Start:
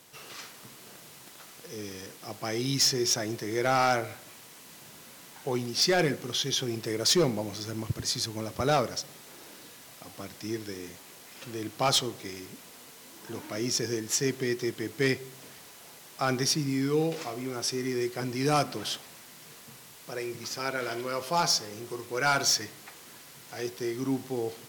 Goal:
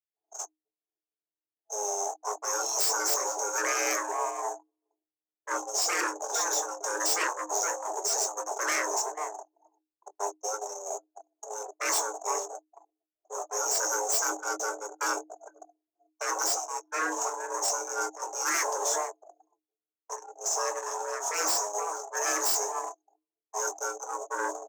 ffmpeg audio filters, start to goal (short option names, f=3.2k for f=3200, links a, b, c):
-filter_complex "[0:a]firequalizer=gain_entry='entry(110,0);entry(190,-14);entry(350,4);entry(560,2);entry(1600,-28);entry(4300,-23);entry(6200,9);entry(9700,-16)':delay=0.05:min_phase=1,asplit=2[a][b];[b]aeval=exprs='0.447*sin(PI/2*6.31*val(0)/0.447)':c=same,volume=-9dB[c];[a][c]amix=inputs=2:normalize=0,asplit=2[d][e];[e]adelay=466,lowpass=f=1.4k:p=1,volume=-12dB,asplit=2[f][g];[g]adelay=466,lowpass=f=1.4k:p=1,volume=0.36,asplit=2[h][i];[i]adelay=466,lowpass=f=1.4k:p=1,volume=0.36,asplit=2[j][k];[k]adelay=466,lowpass=f=1.4k:p=1,volume=0.36[l];[d][f][h][j][l]amix=inputs=5:normalize=0,afftfilt=real='re*lt(hypot(re,im),0.251)':imag='im*lt(hypot(re,im),0.251)':win_size=1024:overlap=0.75,asoftclip=type=tanh:threshold=-21.5dB,agate=range=-43dB:threshold=-32dB:ratio=16:detection=peak,asplit=2[m][n];[n]adelay=23,volume=-10dB[o];[m][o]amix=inputs=2:normalize=0,anlmdn=0.158,afreqshift=310,adynamicequalizer=threshold=0.00501:dfrequency=1100:dqfactor=0.96:tfrequency=1100:tqfactor=0.96:attack=5:release=100:ratio=0.375:range=1.5:mode=boostabove:tftype=bell"